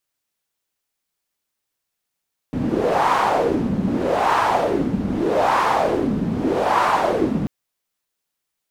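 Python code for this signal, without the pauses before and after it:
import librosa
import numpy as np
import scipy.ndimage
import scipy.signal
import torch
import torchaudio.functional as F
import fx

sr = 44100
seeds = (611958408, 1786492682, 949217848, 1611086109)

y = fx.wind(sr, seeds[0], length_s=4.94, low_hz=200.0, high_hz=1000.0, q=3.3, gusts=4, swing_db=4.0)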